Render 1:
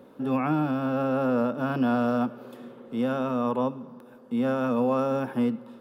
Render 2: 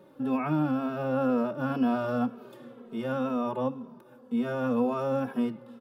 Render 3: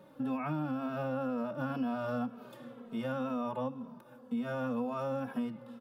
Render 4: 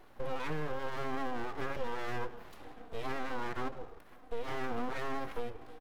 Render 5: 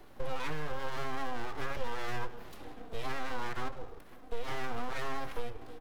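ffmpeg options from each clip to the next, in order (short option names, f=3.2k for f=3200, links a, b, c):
-filter_complex "[0:a]asplit=2[a][b];[b]adelay=2.8,afreqshift=-2[c];[a][c]amix=inputs=2:normalize=1"
-af "equalizer=f=380:t=o:w=0.3:g=-12.5,acompressor=threshold=-32dB:ratio=4"
-filter_complex "[0:a]asplit=2[a][b];[b]adelay=157.4,volume=-17dB,highshelf=f=4k:g=-3.54[c];[a][c]amix=inputs=2:normalize=0,aeval=exprs='abs(val(0))':c=same,volume=1dB"
-filter_complex "[0:a]acrossover=split=120|530|3000[a][b][c][d];[b]acompressor=threshold=-51dB:ratio=6[e];[c]flanger=delay=5:depth=7.3:regen=-68:speed=0.43:shape=sinusoidal[f];[a][e][f][d]amix=inputs=4:normalize=0,volume=5dB"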